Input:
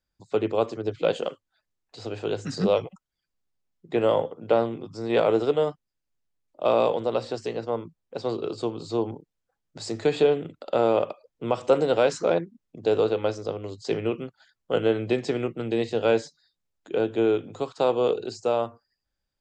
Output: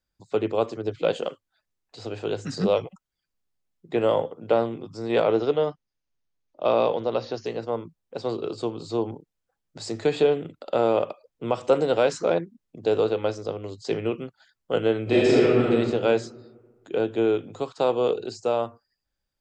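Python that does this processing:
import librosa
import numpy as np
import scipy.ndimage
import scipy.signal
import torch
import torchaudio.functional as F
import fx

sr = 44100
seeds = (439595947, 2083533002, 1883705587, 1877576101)

y = fx.brickwall_lowpass(x, sr, high_hz=6900.0, at=(5.22, 7.46))
y = fx.reverb_throw(y, sr, start_s=15.03, length_s=0.67, rt60_s=1.6, drr_db=-8.5)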